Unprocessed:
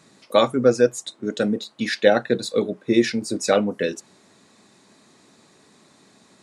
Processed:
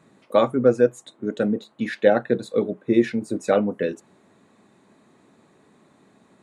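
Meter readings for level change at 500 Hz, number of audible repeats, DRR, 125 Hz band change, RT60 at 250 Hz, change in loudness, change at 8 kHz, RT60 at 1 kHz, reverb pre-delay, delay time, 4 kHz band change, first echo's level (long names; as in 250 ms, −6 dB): −0.5 dB, no echo audible, no reverb audible, 0.0 dB, no reverb audible, −1.0 dB, −12.5 dB, no reverb audible, no reverb audible, no echo audible, −11.0 dB, no echo audible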